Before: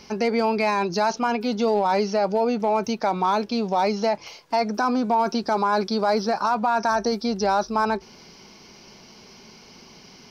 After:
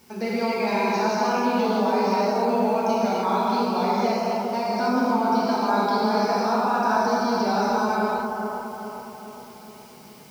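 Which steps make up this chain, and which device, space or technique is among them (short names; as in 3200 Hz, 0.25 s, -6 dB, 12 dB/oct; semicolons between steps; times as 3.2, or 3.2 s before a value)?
plain cassette with noise reduction switched in (mismatched tape noise reduction decoder only; wow and flutter; white noise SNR 29 dB); HPF 75 Hz; analogue delay 0.414 s, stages 4096, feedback 52%, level -5 dB; non-linear reverb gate 0.33 s flat, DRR -7.5 dB; gain -9 dB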